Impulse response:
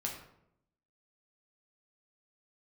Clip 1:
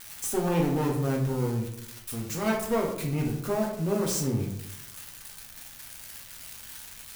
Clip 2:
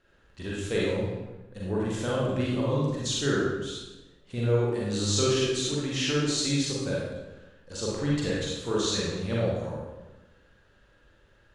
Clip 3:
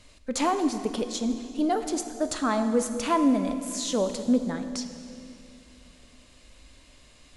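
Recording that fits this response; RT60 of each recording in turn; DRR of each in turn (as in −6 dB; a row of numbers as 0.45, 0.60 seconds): 1; 0.75, 1.1, 2.6 seconds; −1.5, −6.0, 8.0 decibels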